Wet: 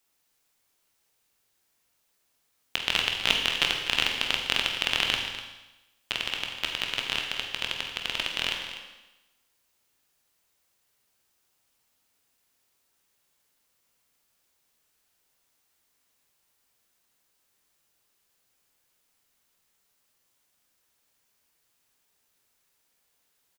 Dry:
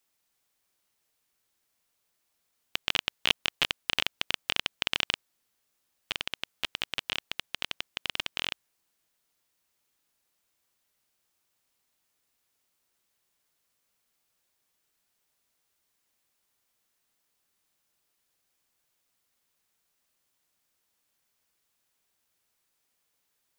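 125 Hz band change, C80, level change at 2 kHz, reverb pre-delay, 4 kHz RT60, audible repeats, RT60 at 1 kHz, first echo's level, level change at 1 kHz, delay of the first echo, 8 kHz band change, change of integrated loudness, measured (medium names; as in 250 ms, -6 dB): +4.5 dB, 5.5 dB, +4.5 dB, 15 ms, 1.0 s, 1, 1.0 s, -12.5 dB, +4.5 dB, 248 ms, +4.5 dB, +4.0 dB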